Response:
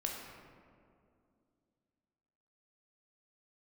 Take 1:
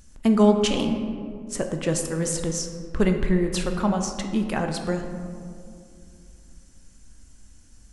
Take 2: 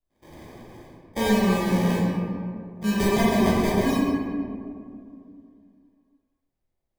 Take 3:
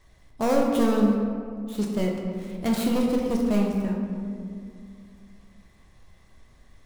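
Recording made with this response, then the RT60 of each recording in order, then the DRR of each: 3; 2.4 s, 2.4 s, 2.4 s; 4.5 dB, -6.5 dB, -1.0 dB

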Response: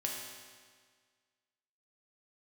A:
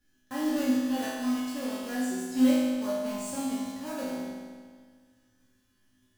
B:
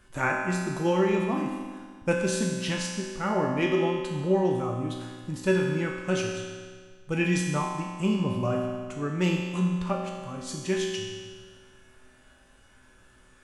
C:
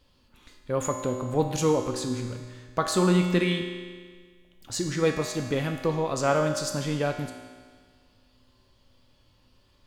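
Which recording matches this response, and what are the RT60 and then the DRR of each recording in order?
B; 1.7 s, 1.7 s, 1.7 s; -10.5 dB, -2.0 dB, 3.0 dB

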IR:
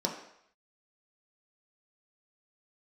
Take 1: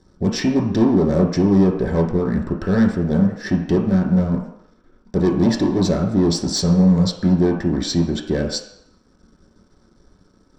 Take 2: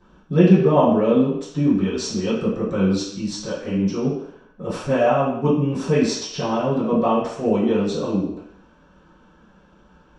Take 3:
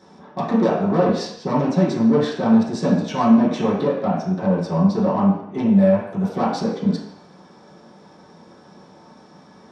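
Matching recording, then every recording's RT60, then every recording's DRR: 1; 0.70 s, 0.70 s, 0.70 s; -0.5 dB, -17.0 dB, -10.0 dB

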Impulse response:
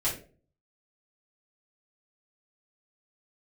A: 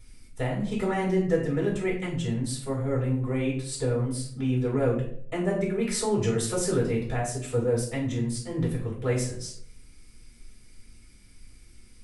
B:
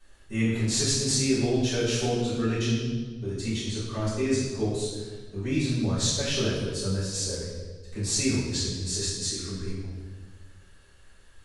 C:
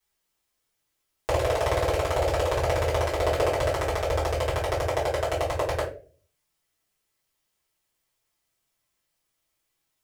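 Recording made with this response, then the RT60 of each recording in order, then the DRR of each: C; 0.60 s, 1.5 s, 0.40 s; -4.5 dB, -12.0 dB, -9.0 dB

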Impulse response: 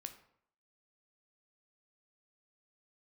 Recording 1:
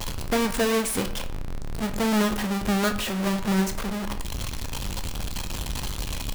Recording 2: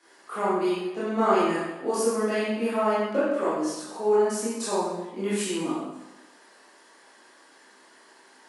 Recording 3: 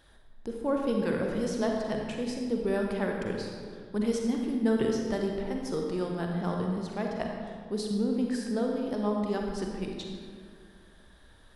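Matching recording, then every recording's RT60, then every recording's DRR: 1; 0.65 s, 1.1 s, 2.1 s; 7.0 dB, -11.0 dB, 0.5 dB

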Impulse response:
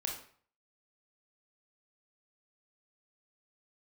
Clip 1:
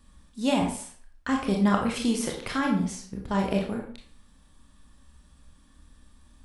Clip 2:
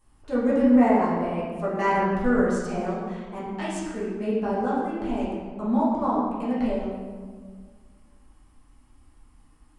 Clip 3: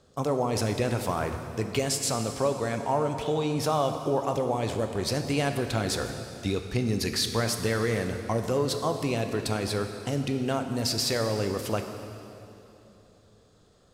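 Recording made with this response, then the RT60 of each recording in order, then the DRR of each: 1; 0.50 s, 1.7 s, 3.0 s; 0.0 dB, -9.5 dB, 6.0 dB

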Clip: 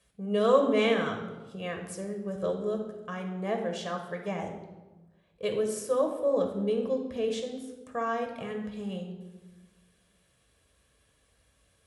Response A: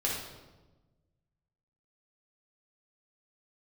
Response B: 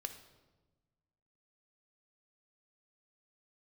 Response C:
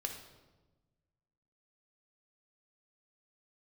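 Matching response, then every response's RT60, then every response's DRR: C; 1.2 s, 1.2 s, 1.2 s; -4.5 dB, 7.5 dB, 3.0 dB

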